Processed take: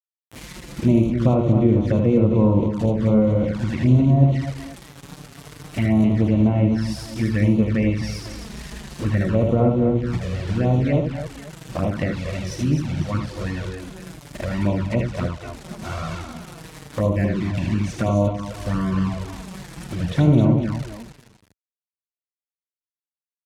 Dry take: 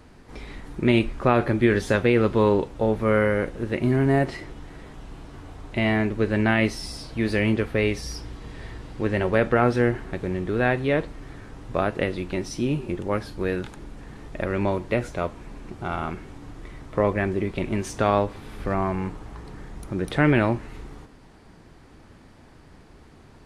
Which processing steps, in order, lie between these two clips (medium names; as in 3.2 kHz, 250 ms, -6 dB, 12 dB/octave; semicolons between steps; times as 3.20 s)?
comb of notches 410 Hz; bit crusher 6-bit; low-pass that closes with the level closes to 1.1 kHz, closed at -18 dBFS; high-pass 54 Hz 12 dB/octave; treble shelf 4.2 kHz +9 dB; on a send: multi-tap echo 56/79/210/263/503 ms -12/-5/-15.5/-7/-14.5 dB; on the sum: touch-sensitive flanger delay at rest 11.1 ms, full sweep at -18 dBFS; tone controls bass +8 dB, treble -2 dB